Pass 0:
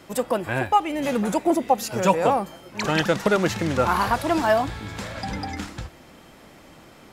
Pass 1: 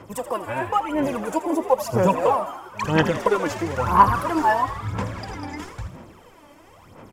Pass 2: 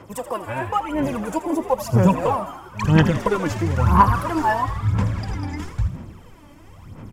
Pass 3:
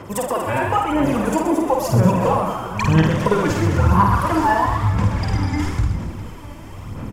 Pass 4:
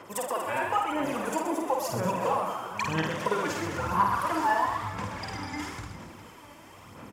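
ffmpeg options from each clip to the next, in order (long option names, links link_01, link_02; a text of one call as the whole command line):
ffmpeg -i in.wav -filter_complex "[0:a]equalizer=frequency=100:width_type=o:width=0.33:gain=11,equalizer=frequency=500:width_type=o:width=0.33:gain=5,equalizer=frequency=1000:width_type=o:width=0.33:gain=10,equalizer=frequency=4000:width_type=o:width=0.33:gain=-8,aphaser=in_gain=1:out_gain=1:delay=3.5:decay=0.71:speed=1:type=sinusoidal,asplit=2[link_01][link_02];[link_02]asplit=7[link_03][link_04][link_05][link_06][link_07][link_08][link_09];[link_03]adelay=81,afreqshift=78,volume=-12.5dB[link_10];[link_04]adelay=162,afreqshift=156,volume=-16.8dB[link_11];[link_05]adelay=243,afreqshift=234,volume=-21.1dB[link_12];[link_06]adelay=324,afreqshift=312,volume=-25.4dB[link_13];[link_07]adelay=405,afreqshift=390,volume=-29.7dB[link_14];[link_08]adelay=486,afreqshift=468,volume=-34dB[link_15];[link_09]adelay=567,afreqshift=546,volume=-38.3dB[link_16];[link_10][link_11][link_12][link_13][link_14][link_15][link_16]amix=inputs=7:normalize=0[link_17];[link_01][link_17]amix=inputs=2:normalize=0,volume=-6.5dB" out.wav
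ffmpeg -i in.wav -af "asubboost=boost=5.5:cutoff=230" out.wav
ffmpeg -i in.wav -af "acompressor=threshold=-27dB:ratio=2,aecho=1:1:50|125|237.5|406.2|659.4:0.631|0.398|0.251|0.158|0.1,volume=7dB" out.wav
ffmpeg -i in.wav -af "highpass=frequency=610:poles=1,volume=-6dB" out.wav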